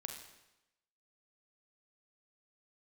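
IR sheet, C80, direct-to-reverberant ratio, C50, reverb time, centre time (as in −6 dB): 7.5 dB, 3.5 dB, 5.5 dB, 0.95 s, 31 ms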